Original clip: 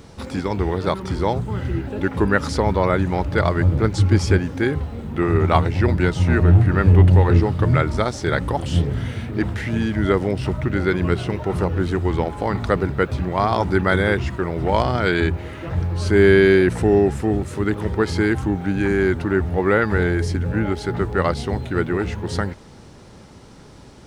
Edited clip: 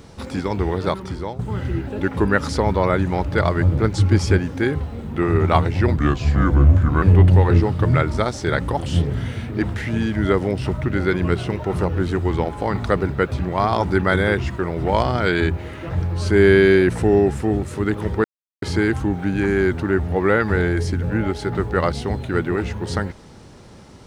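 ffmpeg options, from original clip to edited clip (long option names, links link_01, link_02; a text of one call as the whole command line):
ffmpeg -i in.wav -filter_complex "[0:a]asplit=5[link_01][link_02][link_03][link_04][link_05];[link_01]atrim=end=1.39,asetpts=PTS-STARTPTS,afade=type=out:start_time=0.86:duration=0.53:silence=0.211349[link_06];[link_02]atrim=start=1.39:end=5.964,asetpts=PTS-STARTPTS,afade=type=in:duration=0.004:curve=hsin:silence=0.211349[link_07];[link_03]atrim=start=5.96:end=6.82,asetpts=PTS-STARTPTS,asetrate=35721,aresample=44100,atrim=end_sample=46822,asetpts=PTS-STARTPTS[link_08];[link_04]atrim=start=6.816:end=18.04,asetpts=PTS-STARTPTS,afade=type=out:start_time=11.22:duration=0.004:curve=hsin,apad=pad_dur=0.38[link_09];[link_05]atrim=start=18.04,asetpts=PTS-STARTPTS,afade=type=in:duration=0.004:curve=hsin[link_10];[link_06][link_07]concat=n=2:v=0:a=1[link_11];[link_11][link_08]acrossfade=duration=0.004:curve1=hsin:curve2=hsin[link_12];[link_09][link_10]concat=n=2:v=0:a=1[link_13];[link_12][link_13]acrossfade=duration=0.004:curve1=hsin:curve2=hsin" out.wav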